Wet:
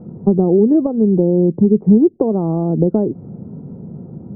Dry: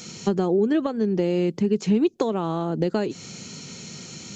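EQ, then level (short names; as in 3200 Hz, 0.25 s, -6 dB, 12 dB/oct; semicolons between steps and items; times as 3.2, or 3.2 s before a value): inverse Chebyshev low-pass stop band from 3600 Hz, stop band 70 dB; air absorption 280 m; low shelf 400 Hz +8.5 dB; +4.0 dB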